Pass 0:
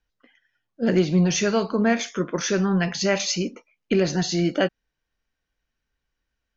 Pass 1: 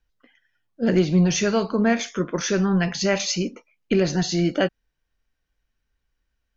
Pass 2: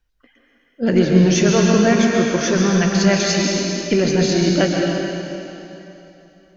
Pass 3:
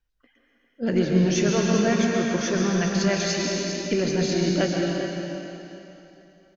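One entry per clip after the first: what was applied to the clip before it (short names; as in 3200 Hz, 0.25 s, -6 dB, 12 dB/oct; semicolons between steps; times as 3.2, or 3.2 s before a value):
low shelf 83 Hz +7.5 dB
plate-style reverb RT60 3 s, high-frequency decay 0.95×, pre-delay 0.11 s, DRR -1 dB; gain +2.5 dB
echo 0.402 s -10 dB; gain -7 dB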